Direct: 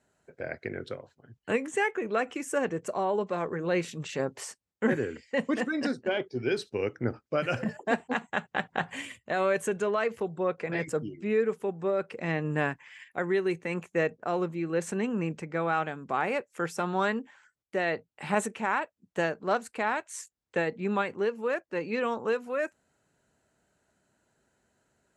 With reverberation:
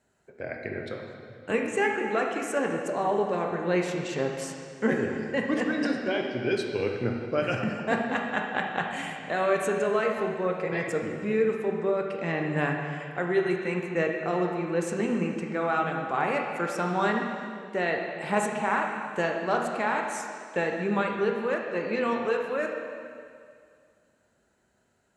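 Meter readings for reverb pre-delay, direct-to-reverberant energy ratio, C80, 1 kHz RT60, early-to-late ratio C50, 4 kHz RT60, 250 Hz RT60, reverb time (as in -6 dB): 7 ms, 1.0 dB, 4.0 dB, 2.2 s, 2.5 dB, 2.1 s, 2.1 s, 2.2 s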